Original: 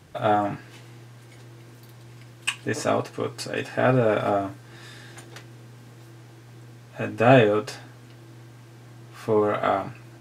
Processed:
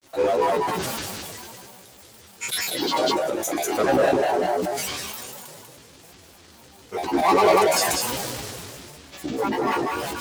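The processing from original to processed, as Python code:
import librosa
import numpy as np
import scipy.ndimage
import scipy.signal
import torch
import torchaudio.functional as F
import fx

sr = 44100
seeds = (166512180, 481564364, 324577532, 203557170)

p1 = scipy.signal.sosfilt(scipy.signal.butter(2, 180.0, 'highpass', fs=sr, output='sos'), x)
p2 = fx.peak_eq(p1, sr, hz=500.0, db=12.0, octaves=0.36)
p3 = fx.resonator_bank(p2, sr, root=47, chord='minor', decay_s=0.43)
p4 = np.clip(p3, -10.0 ** (-33.0 / 20.0), 10.0 ** (-33.0 / 20.0))
p5 = p3 + (p4 * librosa.db_to_amplitude(-3.5))
p6 = fx.bass_treble(p5, sr, bass_db=-5, treble_db=14)
p7 = fx.dmg_crackle(p6, sr, seeds[0], per_s=450.0, level_db=-48.0)
p8 = fx.granulator(p7, sr, seeds[1], grain_ms=100.0, per_s=20.0, spray_ms=100.0, spread_st=12)
p9 = p8 + 10.0 ** (-4.0 / 20.0) * np.pad(p8, (int(193 * sr / 1000.0), 0))[:len(p8)]
p10 = fx.sustainer(p9, sr, db_per_s=20.0)
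y = p10 * librosa.db_to_amplitude(8.5)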